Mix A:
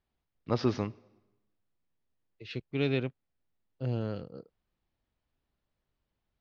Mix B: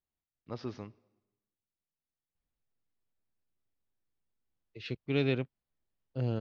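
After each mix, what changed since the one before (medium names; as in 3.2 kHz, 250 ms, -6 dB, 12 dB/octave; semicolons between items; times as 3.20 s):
first voice -11.5 dB; second voice: entry +2.35 s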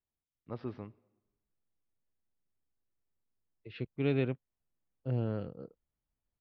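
second voice: entry -1.10 s; master: add distance through air 350 m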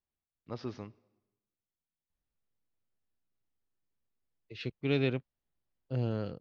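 second voice: entry +0.85 s; master: remove distance through air 350 m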